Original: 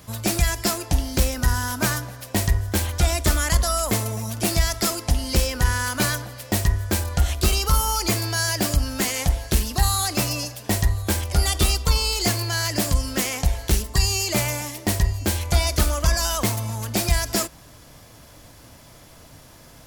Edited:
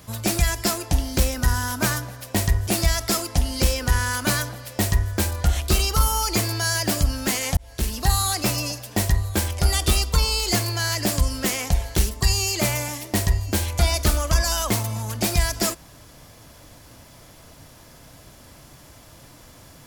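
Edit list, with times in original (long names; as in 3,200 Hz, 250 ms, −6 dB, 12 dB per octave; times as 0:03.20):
0:02.67–0:04.40: remove
0:09.30–0:09.75: fade in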